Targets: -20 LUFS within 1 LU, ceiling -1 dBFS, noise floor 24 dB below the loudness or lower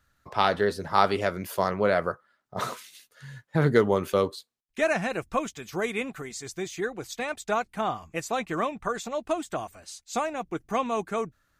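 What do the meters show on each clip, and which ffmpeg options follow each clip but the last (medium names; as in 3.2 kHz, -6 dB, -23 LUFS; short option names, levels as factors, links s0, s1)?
loudness -28.5 LUFS; peak level -5.0 dBFS; loudness target -20.0 LUFS
-> -af "volume=2.66,alimiter=limit=0.891:level=0:latency=1"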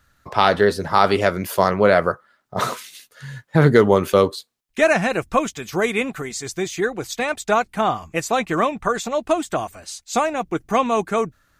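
loudness -20.0 LUFS; peak level -1.0 dBFS; noise floor -64 dBFS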